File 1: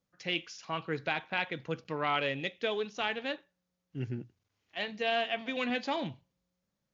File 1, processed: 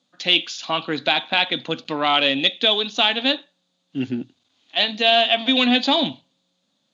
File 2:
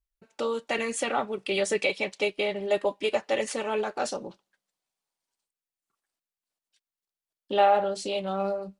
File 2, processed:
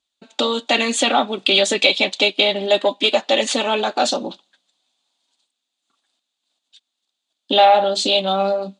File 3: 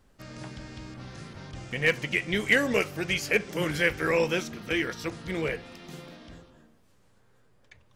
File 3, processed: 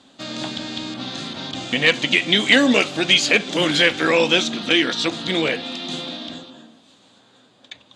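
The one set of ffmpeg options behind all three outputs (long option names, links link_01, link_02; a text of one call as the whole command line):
ffmpeg -i in.wav -filter_complex "[0:a]highshelf=frequency=3400:gain=-10,asplit=2[link_01][link_02];[link_02]acompressor=threshold=-32dB:ratio=6,volume=-2dB[link_03];[link_01][link_03]amix=inputs=2:normalize=0,aexciter=amount=4.3:drive=6.3:freq=3200,asoftclip=type=tanh:threshold=-12dB,highpass=230,equalizer=frequency=260:width_type=q:width=4:gain=9,equalizer=frequency=430:width_type=q:width=4:gain=-6,equalizer=frequency=720:width_type=q:width=4:gain=4,equalizer=frequency=2500:width_type=q:width=4:gain=4,equalizer=frequency=3600:width_type=q:width=4:gain=9,equalizer=frequency=5500:width_type=q:width=4:gain=-9,lowpass=frequency=6900:width=0.5412,lowpass=frequency=6900:width=1.3066,volume=7.5dB" out.wav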